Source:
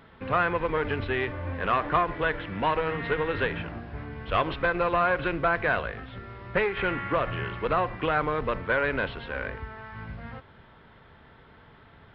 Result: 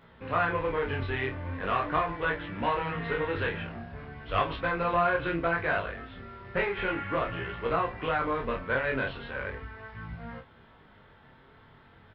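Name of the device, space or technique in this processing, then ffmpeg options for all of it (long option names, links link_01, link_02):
double-tracked vocal: -filter_complex "[0:a]asplit=2[link_01][link_02];[link_02]adelay=30,volume=-4.5dB[link_03];[link_01][link_03]amix=inputs=2:normalize=0,flanger=delay=17:depth=5.6:speed=0.39,volume=-1dB"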